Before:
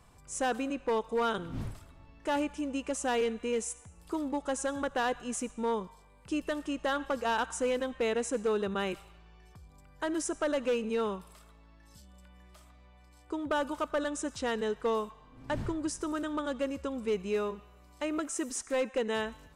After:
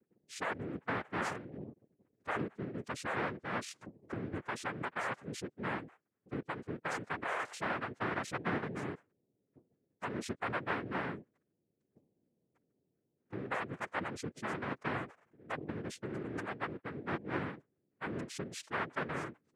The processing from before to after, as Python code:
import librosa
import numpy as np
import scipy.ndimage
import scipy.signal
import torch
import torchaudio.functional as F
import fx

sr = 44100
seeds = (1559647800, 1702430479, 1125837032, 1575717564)

y = fx.spec_expand(x, sr, power=3.3)
y = fx.cheby1_highpass(y, sr, hz=190.0, order=5, at=(16.66, 17.21))
y = fx.noise_vocoder(y, sr, seeds[0], bands=3)
y = fx.band_squash(y, sr, depth_pct=70, at=(3.81, 4.34))
y = F.gain(torch.from_numpy(y), -6.0).numpy()